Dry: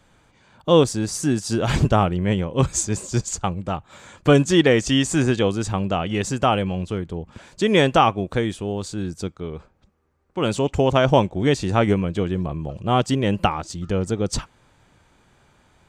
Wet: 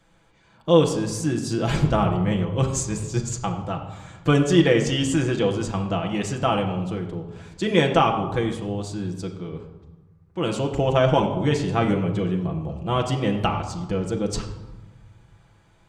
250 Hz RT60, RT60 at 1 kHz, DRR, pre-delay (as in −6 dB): 1.7 s, 1.1 s, 1.0 dB, 6 ms